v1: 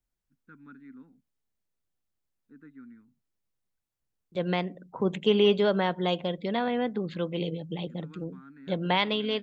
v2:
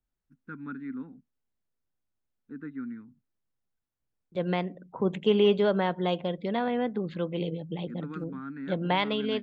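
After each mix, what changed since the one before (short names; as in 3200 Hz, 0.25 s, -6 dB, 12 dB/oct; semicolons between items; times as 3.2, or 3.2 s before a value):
first voice +11.5 dB; master: add high shelf 3600 Hz -9 dB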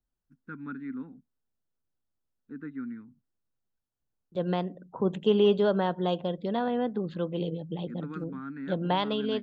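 second voice: add bell 2200 Hz -14 dB 0.36 oct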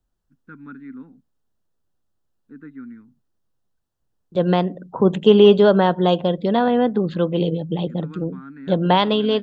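second voice +11.0 dB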